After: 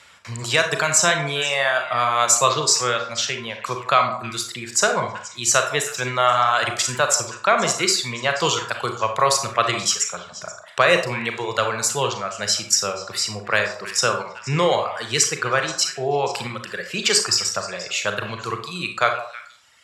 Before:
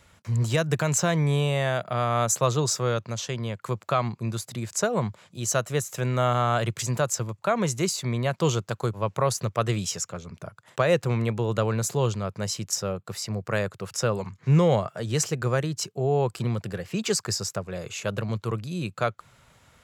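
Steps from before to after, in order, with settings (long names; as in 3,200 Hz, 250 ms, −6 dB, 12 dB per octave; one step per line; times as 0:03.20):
high-pass filter 80 Hz
tilt shelving filter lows −10 dB, about 640 Hz
reverb reduction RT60 1.6 s
high-frequency loss of the air 53 metres
notch filter 6,300 Hz, Q 13
echo through a band-pass that steps 160 ms, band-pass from 790 Hz, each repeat 1.4 octaves, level −10 dB
on a send at −5 dB: convolution reverb RT60 0.40 s, pre-delay 28 ms
on the sum: level +4.5 dB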